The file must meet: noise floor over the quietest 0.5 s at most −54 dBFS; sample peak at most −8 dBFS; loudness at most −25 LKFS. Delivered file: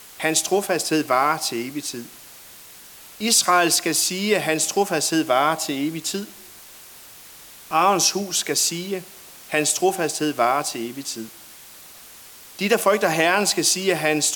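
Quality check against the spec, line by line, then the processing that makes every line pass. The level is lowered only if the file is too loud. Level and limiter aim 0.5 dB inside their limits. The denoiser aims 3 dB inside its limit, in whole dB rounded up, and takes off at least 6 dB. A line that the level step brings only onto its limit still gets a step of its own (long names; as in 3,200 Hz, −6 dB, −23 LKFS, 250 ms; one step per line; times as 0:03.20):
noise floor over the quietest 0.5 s −44 dBFS: out of spec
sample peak −5.5 dBFS: out of spec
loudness −20.5 LKFS: out of spec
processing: broadband denoise 8 dB, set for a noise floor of −44 dBFS
level −5 dB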